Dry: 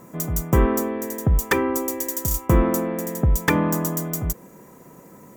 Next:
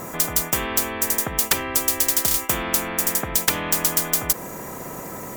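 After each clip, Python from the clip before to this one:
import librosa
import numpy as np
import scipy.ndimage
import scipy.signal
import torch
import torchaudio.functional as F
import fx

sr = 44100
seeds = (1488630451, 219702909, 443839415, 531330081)

y = fx.spectral_comp(x, sr, ratio=4.0)
y = y * librosa.db_to_amplitude(2.5)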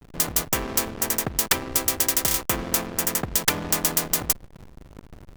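y = fx.backlash(x, sr, play_db=-19.5)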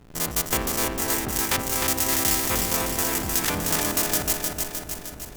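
y = fx.spec_steps(x, sr, hold_ms=50)
y = fx.echo_feedback(y, sr, ms=307, feedback_pct=59, wet_db=-4.0)
y = y * librosa.db_to_amplitude(1.5)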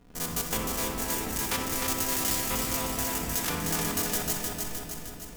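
y = fx.room_shoebox(x, sr, seeds[0], volume_m3=2000.0, walls='mixed', distance_m=1.8)
y = y * librosa.db_to_amplitude(-7.5)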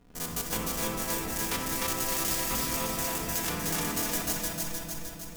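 y = x + 10.0 ** (-4.0 / 20.0) * np.pad(x, (int(301 * sr / 1000.0), 0))[:len(x)]
y = y * librosa.db_to_amplitude(-2.5)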